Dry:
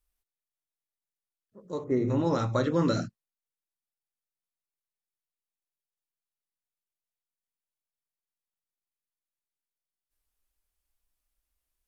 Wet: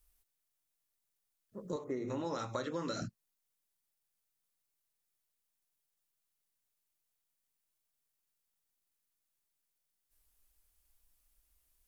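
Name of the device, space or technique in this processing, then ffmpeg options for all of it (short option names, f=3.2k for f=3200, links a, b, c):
ASMR close-microphone chain: -filter_complex "[0:a]asettb=1/sr,asplit=3[a][b][c];[a]atrim=end=1.764[d];[b]atrim=start=1.76:end=3.02,asetpts=PTS-STARTPTS,afade=t=in:d=0.004:c=qsin,afade=t=out:st=1.256:d=0.004:c=qsin,highpass=f=560:p=1[e];[c]atrim=start=3.016[f];[d][e]acrossfade=d=0.004:c1=hsin:c2=qsin[g];[g][f]acrossfade=d=0.004:c1=qsin:c2=hsin,lowshelf=f=180:g=3.5,acompressor=threshold=-40dB:ratio=5,highshelf=f=6.1k:g=7,volume=4dB"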